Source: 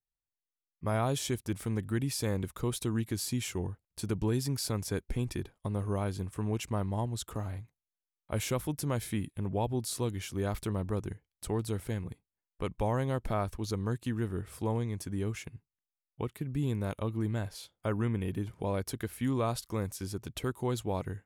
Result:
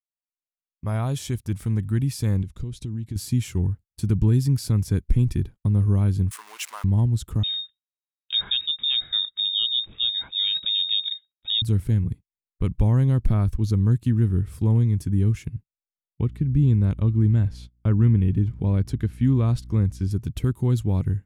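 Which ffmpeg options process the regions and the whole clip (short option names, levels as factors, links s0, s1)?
-filter_complex "[0:a]asettb=1/sr,asplit=3[s0][s1][s2];[s0]atrim=end=2.424[s3];[s1]atrim=start=2.42:end=3.16,asetpts=PTS-STARTPTS,afade=t=in:d=0.004:c=qsin,afade=t=out:st=0.736:d=0.004:c=qsin,lowpass=6600,equalizer=f=1200:w=1.1:g=-10,acompressor=threshold=0.0112:ratio=3:attack=3.2:release=140:knee=1:detection=peak[s4];[s2]atrim=start=3.156[s5];[s3][s4]acrossfade=d=0.004:c1=hsin:c2=qsin[s6];[s6][s5]acrossfade=d=0.004:c1=qsin:c2=hsin,asettb=1/sr,asplit=3[s7][s8][s9];[s7]atrim=end=6.314[s10];[s8]atrim=start=6.31:end=6.84,asetpts=PTS-STARTPTS,afade=t=in:d=0.004:c=qsin,afade=t=out:st=0.526:d=0.004:c=qsin,aeval=exprs='val(0)+0.5*0.0106*sgn(val(0))':c=same,highpass=f=890:w=0.5412,highpass=f=890:w=1.3066,acontrast=51[s11];[s9]atrim=start=6.836[s12];[s10][s11]acrossfade=d=0.004:c1=hsin:c2=qsin[s13];[s13][s12]acrossfade=d=0.004:c1=qsin:c2=hsin,asettb=1/sr,asplit=3[s14][s15][s16];[s14]atrim=end=7.434[s17];[s15]atrim=start=7.43:end=11.62,asetpts=PTS-STARTPTS,afade=t=in:d=0.004:c=qsin,afade=t=out:st=4.186:d=0.004:c=qsin,lowshelf=f=320:g=11.5,lowpass=f=3200:t=q:w=0.5098,lowpass=f=3200:t=q:w=0.6013,lowpass=f=3200:t=q:w=0.9,lowpass=f=3200:t=q:w=2.563,afreqshift=-3800[s18];[s16]atrim=start=11.616[s19];[s17][s18]acrossfade=d=0.004:c1=hsin:c2=qsin[s20];[s20][s19]acrossfade=d=0.004:c1=qsin:c2=hsin,asettb=1/sr,asplit=3[s21][s22][s23];[s21]atrim=end=16.254[s24];[s22]atrim=start=16.25:end=20.11,asetpts=PTS-STARTPTS,afade=t=in:d=0.004:c=qsin,afade=t=out:st=3.856:d=0.004:c=qsin,adynamicsmooth=sensitivity=5:basefreq=6900,aeval=exprs='val(0)+0.00178*(sin(2*PI*60*n/s)+sin(2*PI*2*60*n/s)/2+sin(2*PI*3*60*n/s)/3+sin(2*PI*4*60*n/s)/4+sin(2*PI*5*60*n/s)/5)':c=same[s25];[s23]atrim=start=20.106[s26];[s24][s25]acrossfade=d=0.004:c1=hsin:c2=qsin[s27];[s27][s26]acrossfade=d=0.004:c1=qsin:c2=hsin,agate=range=0.0562:threshold=0.00355:ratio=16:detection=peak,asubboost=boost=7.5:cutoff=220"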